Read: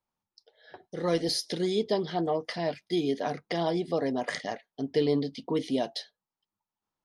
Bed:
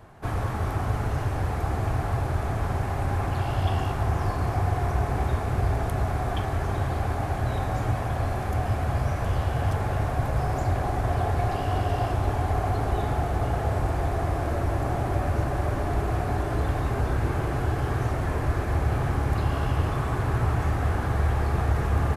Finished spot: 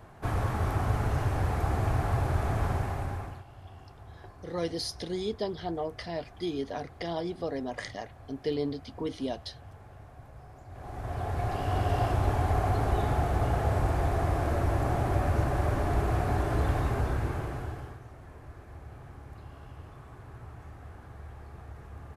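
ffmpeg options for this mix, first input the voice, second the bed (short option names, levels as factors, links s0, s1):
-filter_complex "[0:a]adelay=3500,volume=0.562[s0];[1:a]volume=10.6,afade=t=out:st=2.65:d=0.79:silence=0.0794328,afade=t=in:st=10.69:d=1.28:silence=0.0794328,afade=t=out:st=16.76:d=1.24:silence=0.1[s1];[s0][s1]amix=inputs=2:normalize=0"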